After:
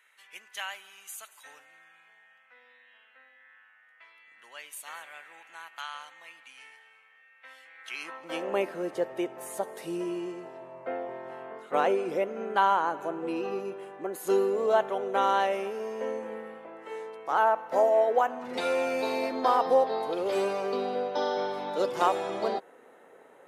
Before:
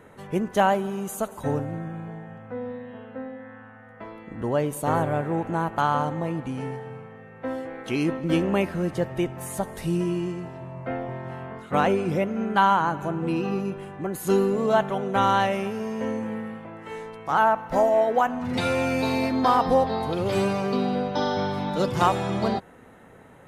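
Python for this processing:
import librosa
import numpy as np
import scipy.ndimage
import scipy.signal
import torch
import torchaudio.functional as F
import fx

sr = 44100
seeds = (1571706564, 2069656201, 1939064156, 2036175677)

y = fx.filter_sweep_highpass(x, sr, from_hz=2300.0, to_hz=430.0, start_s=7.74, end_s=8.59, q=1.6)
y = y * 10.0 ** (-5.5 / 20.0)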